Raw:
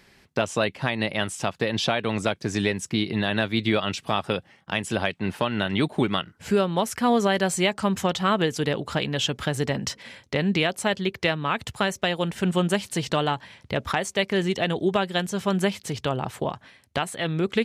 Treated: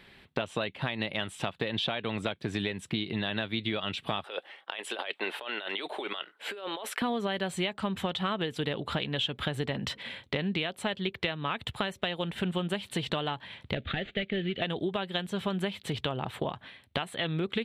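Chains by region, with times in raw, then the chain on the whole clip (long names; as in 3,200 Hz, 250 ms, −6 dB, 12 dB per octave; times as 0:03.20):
0:04.24–0:07.02: high-pass filter 410 Hz 24 dB per octave + compressor whose output falls as the input rises −34 dBFS + shaped tremolo triangle 1.3 Hz, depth 50%
0:13.75–0:14.62: variable-slope delta modulation 32 kbit/s + phaser with its sweep stopped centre 2,400 Hz, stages 4
whole clip: high shelf with overshoot 4,400 Hz −6.5 dB, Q 3; notch filter 6,600 Hz, Q 13; downward compressor, threshold −28 dBFS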